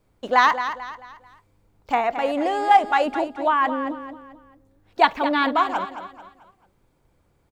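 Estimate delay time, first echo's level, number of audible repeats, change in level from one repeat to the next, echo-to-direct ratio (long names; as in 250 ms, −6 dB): 220 ms, −10.5 dB, 3, −8.5 dB, −10.0 dB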